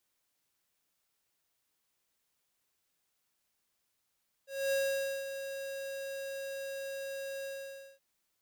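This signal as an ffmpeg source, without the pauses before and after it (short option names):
-f lavfi -i "aevalsrc='0.0316*(2*lt(mod(546*t,1),0.5)-1)':d=3.521:s=44100,afade=t=in:d=0.252,afade=t=out:st=0.252:d=0.519:silence=0.316,afade=t=out:st=2.98:d=0.541"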